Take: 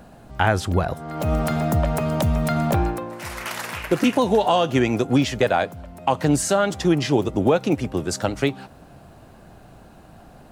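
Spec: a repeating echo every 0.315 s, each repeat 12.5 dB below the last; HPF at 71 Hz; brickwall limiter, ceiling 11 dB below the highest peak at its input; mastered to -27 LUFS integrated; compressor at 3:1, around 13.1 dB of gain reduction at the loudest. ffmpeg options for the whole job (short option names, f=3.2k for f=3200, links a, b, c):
-af "highpass=71,acompressor=threshold=-32dB:ratio=3,alimiter=level_in=2.5dB:limit=-24dB:level=0:latency=1,volume=-2.5dB,aecho=1:1:315|630|945:0.237|0.0569|0.0137,volume=9dB"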